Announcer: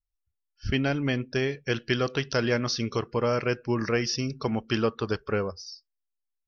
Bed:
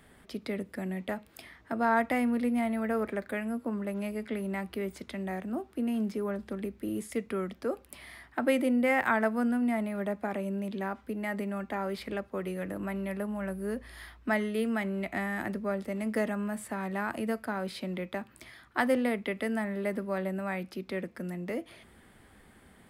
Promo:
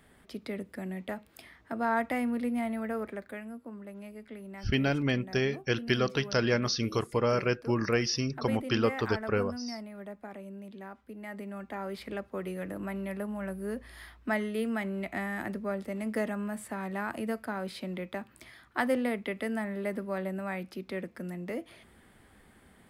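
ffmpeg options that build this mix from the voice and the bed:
-filter_complex "[0:a]adelay=4000,volume=0.841[s0];[1:a]volume=2.11,afade=t=out:st=2.72:d=0.9:silence=0.398107,afade=t=in:st=11.05:d=1.25:silence=0.354813[s1];[s0][s1]amix=inputs=2:normalize=0"

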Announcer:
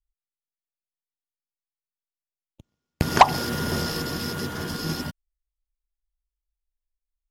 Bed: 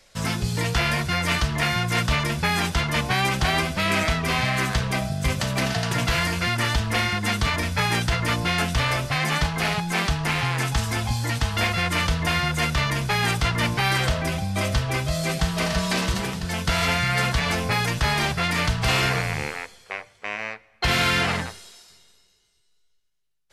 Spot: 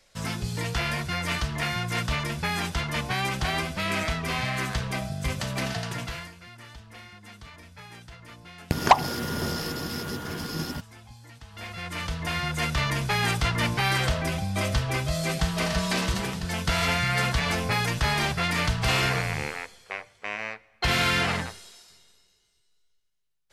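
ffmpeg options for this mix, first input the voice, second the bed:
-filter_complex "[0:a]adelay=5700,volume=0.708[s0];[1:a]volume=5.62,afade=t=out:st=5.72:d=0.62:silence=0.133352,afade=t=in:st=11.46:d=1.44:silence=0.0944061[s1];[s0][s1]amix=inputs=2:normalize=0"

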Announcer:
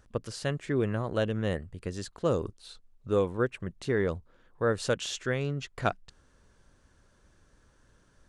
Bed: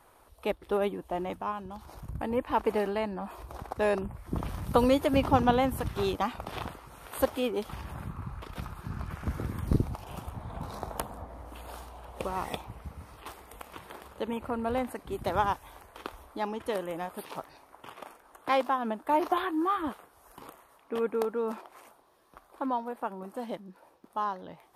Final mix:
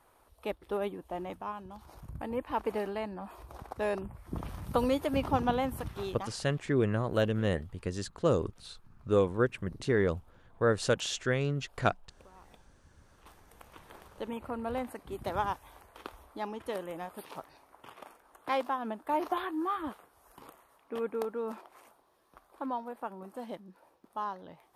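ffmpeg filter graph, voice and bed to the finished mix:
-filter_complex "[0:a]adelay=6000,volume=1.06[s0];[1:a]volume=5.01,afade=t=out:st=5.79:d=0.77:silence=0.11885,afade=t=in:st=12.88:d=1.42:silence=0.112202[s1];[s0][s1]amix=inputs=2:normalize=0"

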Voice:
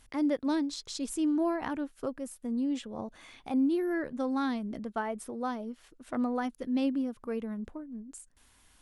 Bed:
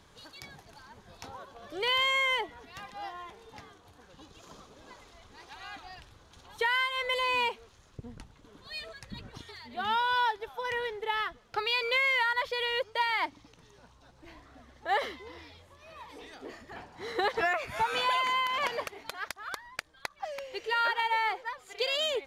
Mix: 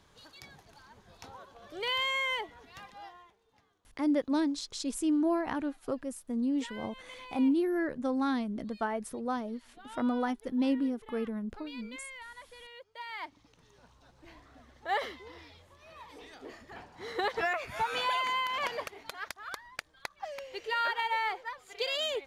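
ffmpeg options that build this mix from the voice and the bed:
-filter_complex "[0:a]adelay=3850,volume=1.06[s0];[1:a]volume=4.47,afade=t=out:st=2.81:d=0.56:silence=0.16788,afade=t=in:st=12.89:d=1.03:silence=0.141254[s1];[s0][s1]amix=inputs=2:normalize=0"

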